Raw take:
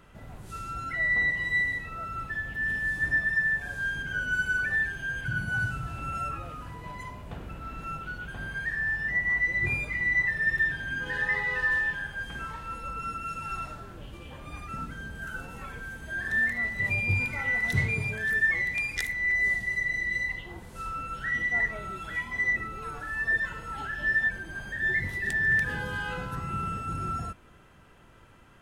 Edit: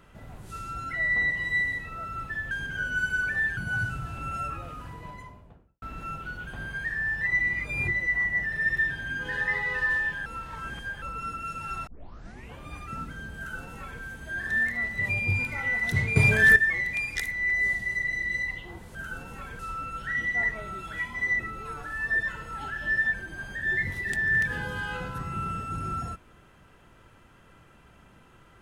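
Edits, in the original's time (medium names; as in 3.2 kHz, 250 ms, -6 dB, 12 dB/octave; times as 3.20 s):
2.51–3.87 s: delete
4.93–5.38 s: delete
6.67–7.63 s: studio fade out
9.02–10.33 s: reverse
12.07–12.83 s: reverse
13.68 s: tape start 0.70 s
15.18–15.82 s: copy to 20.76 s
17.97–18.37 s: gain +11.5 dB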